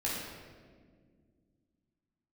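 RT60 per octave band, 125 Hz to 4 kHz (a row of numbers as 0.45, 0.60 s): 3.0, 3.1, 2.2, 1.4, 1.3, 1.1 s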